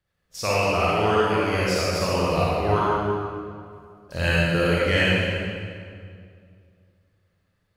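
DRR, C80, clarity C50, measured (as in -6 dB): -7.5 dB, -2.5 dB, -5.5 dB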